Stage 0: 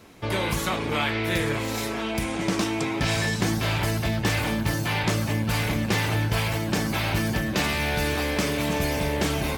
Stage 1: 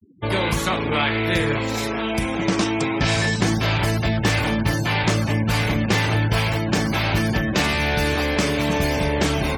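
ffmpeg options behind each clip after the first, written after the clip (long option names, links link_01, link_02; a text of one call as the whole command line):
ffmpeg -i in.wav -af "afftfilt=real='re*gte(hypot(re,im),0.0158)':imag='im*gte(hypot(re,im),0.0158)':win_size=1024:overlap=0.75,equalizer=frequency=13000:width_type=o:width=0.4:gain=-4,volume=4.5dB" out.wav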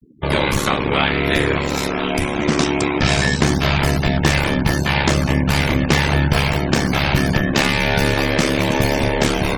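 ffmpeg -i in.wav -af "aeval=exprs='val(0)*sin(2*PI*35*n/s)':channel_layout=same,volume=6.5dB" out.wav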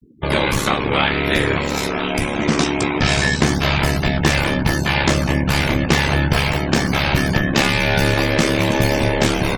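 ffmpeg -i in.wav -filter_complex "[0:a]asplit=2[link_01][link_02];[link_02]adelay=18,volume=-10.5dB[link_03];[link_01][link_03]amix=inputs=2:normalize=0" out.wav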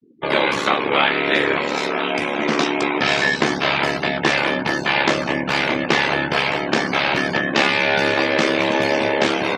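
ffmpeg -i in.wav -af "highpass=310,lowpass=4200,volume=1.5dB" out.wav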